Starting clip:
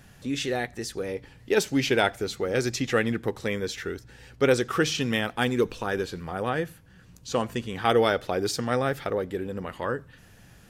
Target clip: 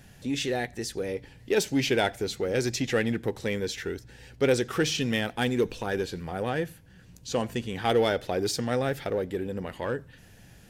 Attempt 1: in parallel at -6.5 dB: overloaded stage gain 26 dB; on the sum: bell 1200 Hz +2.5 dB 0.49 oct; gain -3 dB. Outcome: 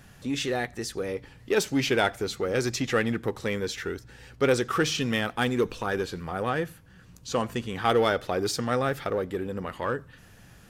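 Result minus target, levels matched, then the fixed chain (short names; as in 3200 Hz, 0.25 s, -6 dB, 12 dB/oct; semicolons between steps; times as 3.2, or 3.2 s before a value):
1000 Hz band +3.0 dB
in parallel at -6.5 dB: overloaded stage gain 26 dB; on the sum: bell 1200 Hz -7.5 dB 0.49 oct; gain -3 dB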